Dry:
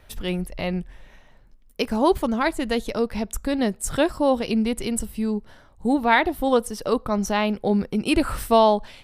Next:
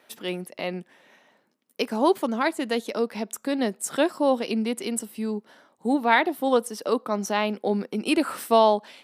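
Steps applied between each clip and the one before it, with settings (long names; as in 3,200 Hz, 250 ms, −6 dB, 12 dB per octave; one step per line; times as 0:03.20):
high-pass filter 220 Hz 24 dB per octave
level −1.5 dB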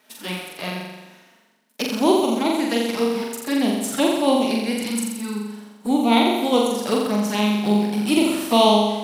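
spectral envelope flattened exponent 0.6
flanger swept by the level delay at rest 4.8 ms, full sweep at −21 dBFS
on a send: flutter between parallel walls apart 7.4 metres, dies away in 1.1 s
on the sum: level +2.5 dB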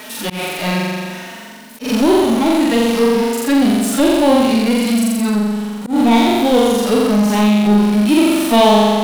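power curve on the samples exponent 0.5
harmonic and percussive parts rebalanced percussive −17 dB
volume swells 133 ms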